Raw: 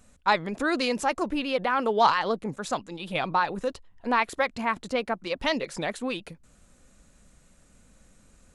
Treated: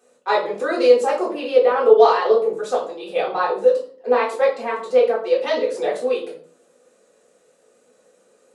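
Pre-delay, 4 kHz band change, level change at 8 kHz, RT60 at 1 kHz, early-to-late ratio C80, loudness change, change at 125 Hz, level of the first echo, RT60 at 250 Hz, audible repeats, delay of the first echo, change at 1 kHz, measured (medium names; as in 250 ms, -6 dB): 3 ms, 0.0 dB, no reading, 0.45 s, 12.0 dB, +8.5 dB, under -10 dB, no echo, 0.75 s, no echo, no echo, +3.5 dB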